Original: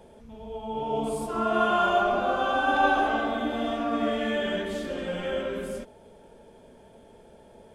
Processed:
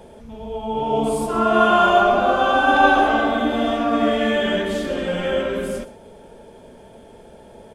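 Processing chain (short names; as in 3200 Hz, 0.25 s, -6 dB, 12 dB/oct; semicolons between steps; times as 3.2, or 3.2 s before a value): echo 0.119 s -16 dB; gain +8 dB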